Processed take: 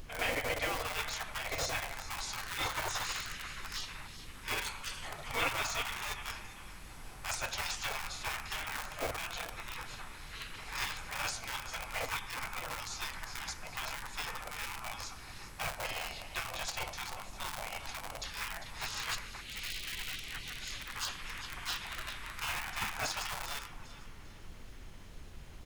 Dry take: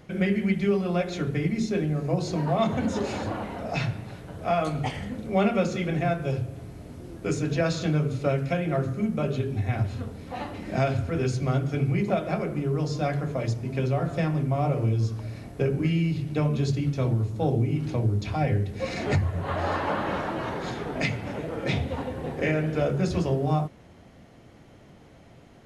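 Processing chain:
sub-octave generator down 1 octave, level −4 dB
linear-phase brick-wall high-pass 180 Hz
low-shelf EQ 350 Hz +12 dB
on a send: repeating echo 398 ms, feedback 38%, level −13 dB
on the sum: convolution reverb RT60 1.2 s, pre-delay 3 ms, DRR 18 dB
in parallel at −10 dB: comparator with hysteresis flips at −19 dBFS
on the sum: gate on every frequency bin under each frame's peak −25 dB weak
background noise brown −49 dBFS
high-shelf EQ 6,300 Hz +4.5 dB
level +1.5 dB

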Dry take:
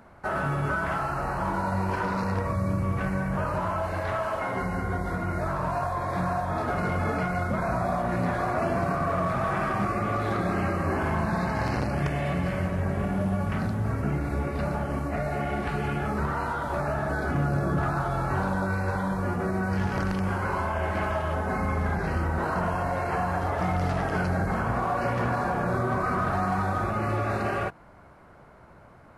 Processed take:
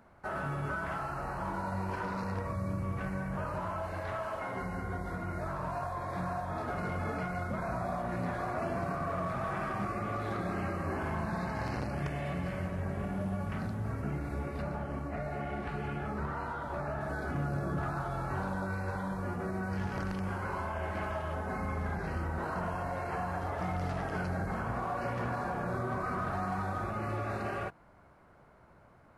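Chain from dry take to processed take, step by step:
0:14.62–0:17.01: high-shelf EQ 5,200 Hz −7.5 dB
level −8 dB

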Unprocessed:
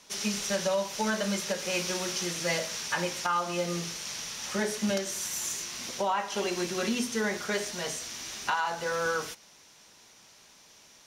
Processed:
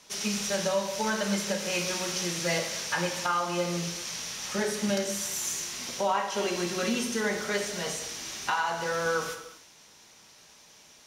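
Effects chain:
reverb whose tail is shaped and stops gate 400 ms falling, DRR 5 dB

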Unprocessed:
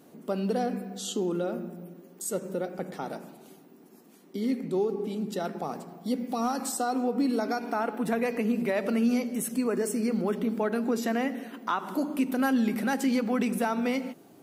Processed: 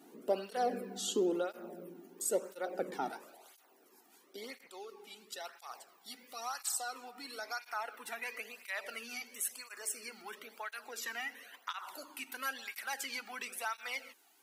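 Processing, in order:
high-pass filter 310 Hz 12 dB per octave, from 0:03.10 710 Hz, from 0:04.67 1,500 Hz
through-zero flanger with one copy inverted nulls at 0.98 Hz, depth 2 ms
level +1 dB

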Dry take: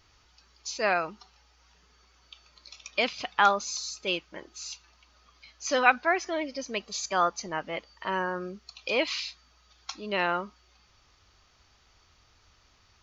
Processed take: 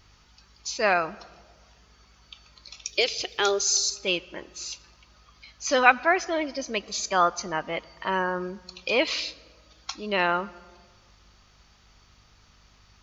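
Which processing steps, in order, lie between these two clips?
0:02.85–0:03.90: drawn EQ curve 140 Hz 0 dB, 250 Hz −18 dB, 370 Hz +12 dB, 530 Hz −2 dB, 960 Hz −14 dB, 5,300 Hz +8 dB, 8,900 Hz +10 dB
mains hum 50 Hz, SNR 33 dB
on a send: convolution reverb RT60 1.6 s, pre-delay 81 ms, DRR 21.5 dB
on the sum: level +3.5 dB

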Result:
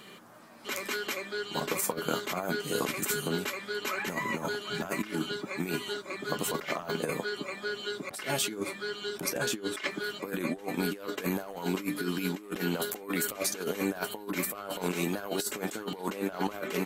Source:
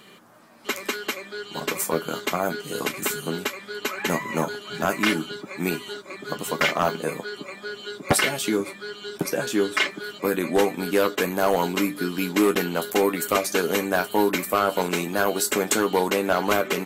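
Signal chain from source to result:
compressor whose output falls as the input rises −27 dBFS, ratio −0.5
level −4.5 dB

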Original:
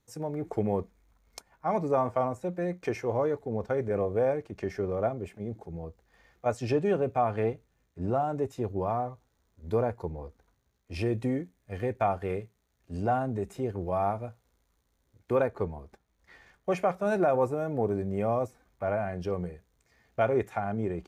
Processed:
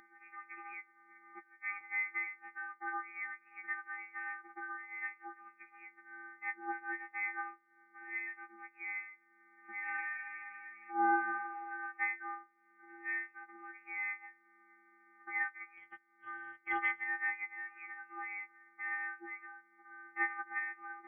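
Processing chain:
every partial snapped to a pitch grid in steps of 3 semitones
0:00.72–0:01.81: treble cut that deepens with the level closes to 2,600 Hz, closed at −28 dBFS
0:09.82–0:11.29: thrown reverb, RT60 1.9 s, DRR −9.5 dB
Butterworth high-pass 1,200 Hz 48 dB per octave
0:05.36–0:05.80: transient designer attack +4 dB, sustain −4 dB
0:15.77–0:17.04: leveller curve on the samples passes 1
upward compression, threshold −39 dBFS
voice inversion scrambler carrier 3,300 Hz

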